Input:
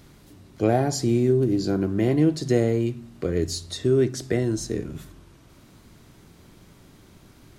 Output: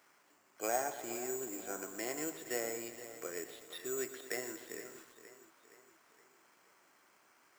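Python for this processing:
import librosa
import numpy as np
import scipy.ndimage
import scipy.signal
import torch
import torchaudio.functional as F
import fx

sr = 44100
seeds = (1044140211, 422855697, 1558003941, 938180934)

y = fx.wiener(x, sr, points=9)
y = np.repeat(scipy.signal.resample_poly(y, 1, 6), 6)[:len(y)]
y = scipy.signal.sosfilt(scipy.signal.butter(2, 970.0, 'highpass', fs=sr, output='sos'), y)
y = fx.echo_feedback(y, sr, ms=468, feedback_pct=50, wet_db=-14.0)
y = fx.echo_crushed(y, sr, ms=121, feedback_pct=80, bits=8, wet_db=-13.0)
y = y * librosa.db_to_amplitude(-3.5)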